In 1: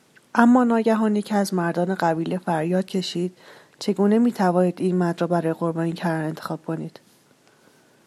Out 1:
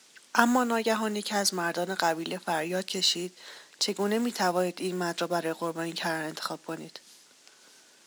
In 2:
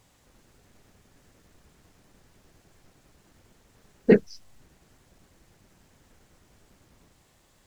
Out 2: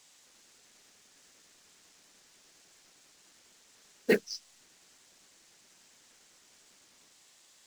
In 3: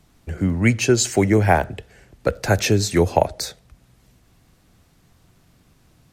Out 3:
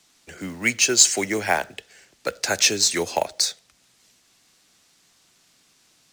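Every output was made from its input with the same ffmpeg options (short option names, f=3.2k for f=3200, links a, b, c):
-filter_complex "[0:a]crystalizer=i=10:c=0,acrossover=split=190 7800:gain=0.158 1 0.1[a][b][c];[a][b][c]amix=inputs=3:normalize=0,acrusher=bits=5:mode=log:mix=0:aa=0.000001,volume=-9dB"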